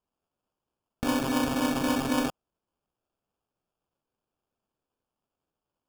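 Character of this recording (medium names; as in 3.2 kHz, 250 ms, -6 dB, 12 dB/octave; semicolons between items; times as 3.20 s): phasing stages 2, 3.8 Hz, lowest notch 540–3300 Hz; aliases and images of a low sample rate 2 kHz, jitter 0%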